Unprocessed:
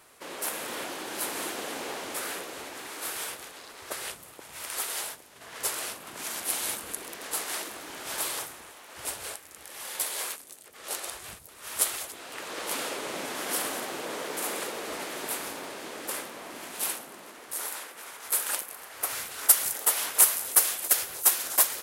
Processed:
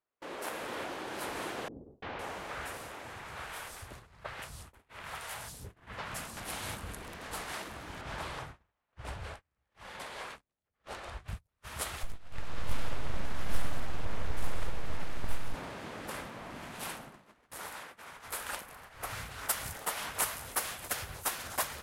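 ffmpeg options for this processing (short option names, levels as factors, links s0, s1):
-filter_complex "[0:a]asettb=1/sr,asplit=3[s0][s1][s2];[s0]atrim=end=1.684[s3];[s1]atrim=start=1.68:end=6.37,asetpts=PTS-STARTPTS,afade=t=in:d=0.004:c=qsin,afade=t=out:st=4.686:d=0.004:c=qsin,acrossover=split=410|4200[s4][s5][s6];[s5]adelay=340[s7];[s6]adelay=510[s8];[s4][s7][s8]amix=inputs=3:normalize=0,atrim=end_sample=206829[s9];[s2]atrim=start=6.366[s10];[s3][s9]acrossfade=d=0.004:c1=hsin:c2=qsin[s11];[s11][s10]acrossfade=d=0.004:c1=qsin:c2=hsin,asettb=1/sr,asplit=3[s12][s13][s14];[s12]atrim=end=8.014[s15];[s13]atrim=start=8.01:end=11.28,asetpts=PTS-STARTPTS,afade=t=in:d=0.004:c=qsin,afade=t=out:st=3.266:d=0.004:c=qsin,aemphasis=mode=reproduction:type=50fm[s16];[s14]atrim=start=11.276[s17];[s15][s16]acrossfade=d=0.004:c1=hsin:c2=qsin[s18];[s18][s17]acrossfade=d=0.004:c1=qsin:c2=hsin,asettb=1/sr,asplit=3[s19][s20][s21];[s19]atrim=end=12.034[s22];[s20]atrim=start=12.03:end=15.54,asetpts=PTS-STARTPTS,afade=t=in:d=0.004:c=qsin,afade=t=out:st=3.506:d=0.004:c=qsin,aeval=exprs='max(val(0),0)':c=same[s23];[s21]atrim=start=15.536[s24];[s22][s23]acrossfade=d=0.004:c1=hsin:c2=qsin[s25];[s25][s24]acrossfade=d=0.004:c1=qsin:c2=hsin,agate=range=0.0251:threshold=0.00631:ratio=16:detection=peak,lowpass=f=1800:p=1,asubboost=boost=10:cutoff=110"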